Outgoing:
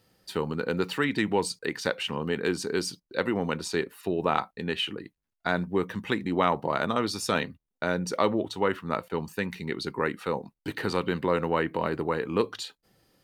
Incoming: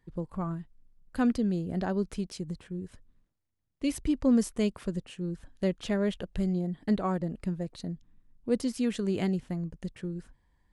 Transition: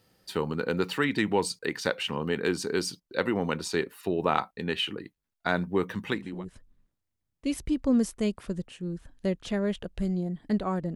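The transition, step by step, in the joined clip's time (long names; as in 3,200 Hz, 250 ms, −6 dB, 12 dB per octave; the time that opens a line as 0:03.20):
outgoing
0:06.24: continue with incoming from 0:02.62, crossfade 0.42 s linear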